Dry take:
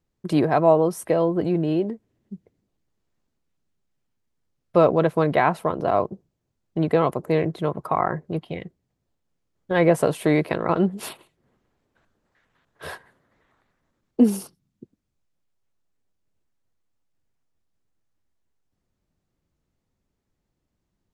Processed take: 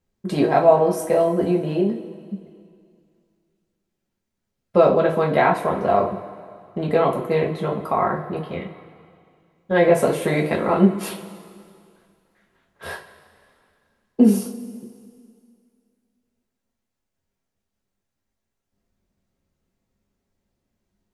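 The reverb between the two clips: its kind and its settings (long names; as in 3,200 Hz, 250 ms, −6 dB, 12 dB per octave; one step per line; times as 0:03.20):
coupled-rooms reverb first 0.29 s, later 2.3 s, from −18 dB, DRR −2 dB
level −1.5 dB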